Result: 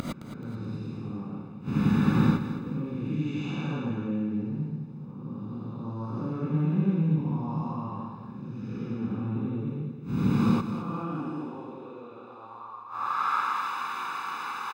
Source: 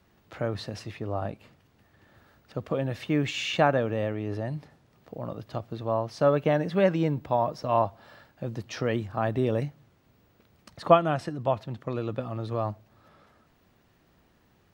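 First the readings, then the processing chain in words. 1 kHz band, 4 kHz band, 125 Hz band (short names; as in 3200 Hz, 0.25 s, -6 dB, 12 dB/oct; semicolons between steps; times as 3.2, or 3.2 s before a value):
-2.5 dB, n/a, +3.0 dB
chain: time blur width 0.384 s; tilt -2.5 dB/oct; comb 0.8 ms, depth 99%; in parallel at +2 dB: limiter -20 dBFS, peak gain reduction 9 dB; on the sum: upward compressor, threshold -25 dBFS; high-pass sweep 180 Hz -> 1100 Hz, 10.77–12.77; flipped gate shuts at -25 dBFS, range -27 dB; on a send: feedback echo 0.215 s, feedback 41%, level -10.5 dB; on the sum: non-linear reverb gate 0.13 s rising, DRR -6 dB; gain +6.5 dB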